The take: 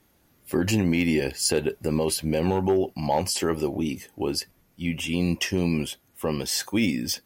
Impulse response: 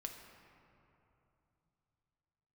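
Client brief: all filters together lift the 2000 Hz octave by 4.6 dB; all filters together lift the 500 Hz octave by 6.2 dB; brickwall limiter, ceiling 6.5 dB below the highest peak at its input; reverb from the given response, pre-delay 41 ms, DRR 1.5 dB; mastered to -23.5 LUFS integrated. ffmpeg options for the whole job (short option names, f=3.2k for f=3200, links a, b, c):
-filter_complex "[0:a]equalizer=f=500:t=o:g=8,equalizer=f=2k:t=o:g=5.5,alimiter=limit=-13dB:level=0:latency=1,asplit=2[a][b];[1:a]atrim=start_sample=2205,adelay=41[c];[b][c]afir=irnorm=-1:irlink=0,volume=1.5dB[d];[a][d]amix=inputs=2:normalize=0,volume=-1dB"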